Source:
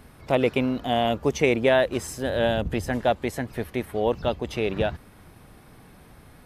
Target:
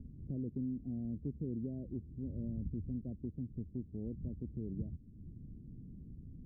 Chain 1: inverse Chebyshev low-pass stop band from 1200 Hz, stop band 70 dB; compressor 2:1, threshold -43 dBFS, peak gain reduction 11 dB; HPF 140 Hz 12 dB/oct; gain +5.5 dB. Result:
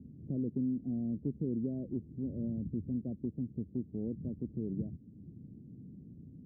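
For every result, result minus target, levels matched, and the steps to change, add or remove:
compressor: peak gain reduction -6 dB; 125 Hz band -3.5 dB
change: compressor 2:1, threshold -55 dBFS, peak gain reduction 17 dB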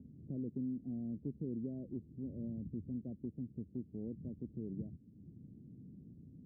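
125 Hz band -3.5 dB
remove: HPF 140 Hz 12 dB/oct

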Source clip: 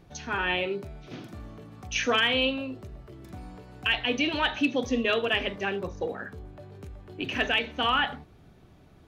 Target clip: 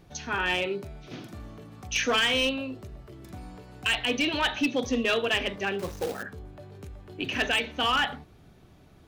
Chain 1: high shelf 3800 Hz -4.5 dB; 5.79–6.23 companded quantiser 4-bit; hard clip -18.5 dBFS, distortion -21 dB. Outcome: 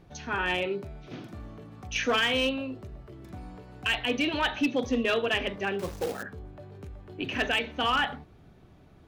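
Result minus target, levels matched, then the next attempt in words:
8000 Hz band -4.5 dB
high shelf 3800 Hz +4.5 dB; 5.79–6.23 companded quantiser 4-bit; hard clip -18.5 dBFS, distortion -16 dB

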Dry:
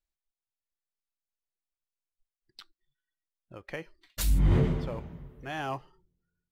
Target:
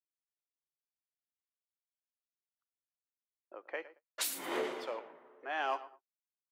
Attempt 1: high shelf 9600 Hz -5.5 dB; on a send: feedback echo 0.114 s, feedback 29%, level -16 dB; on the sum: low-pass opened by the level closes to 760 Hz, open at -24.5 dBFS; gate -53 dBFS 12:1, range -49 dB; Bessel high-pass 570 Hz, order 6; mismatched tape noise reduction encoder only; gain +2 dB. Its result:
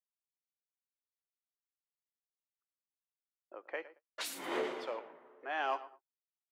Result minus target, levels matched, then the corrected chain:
8000 Hz band -6.0 dB
high shelf 9600 Hz +5.5 dB; on a send: feedback echo 0.114 s, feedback 29%, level -16 dB; on the sum: low-pass opened by the level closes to 760 Hz, open at -24.5 dBFS; gate -53 dBFS 12:1, range -49 dB; Bessel high-pass 570 Hz, order 6; mismatched tape noise reduction encoder only; gain +2 dB

